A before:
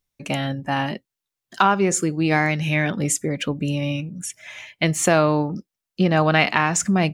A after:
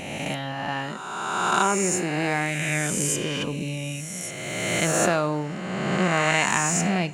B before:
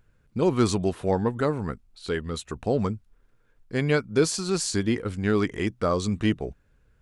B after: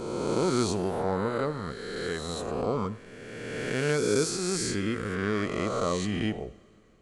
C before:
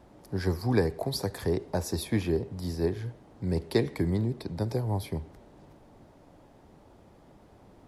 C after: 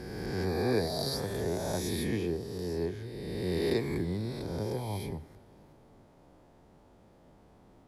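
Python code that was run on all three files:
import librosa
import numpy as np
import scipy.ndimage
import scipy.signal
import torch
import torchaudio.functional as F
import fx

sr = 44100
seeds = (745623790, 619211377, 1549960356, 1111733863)

y = fx.spec_swells(x, sr, rise_s=2.11)
y = fx.rev_double_slope(y, sr, seeds[0], early_s=0.6, late_s=4.2, knee_db=-19, drr_db=14.0)
y = y * 10.0 ** (-7.5 / 20.0)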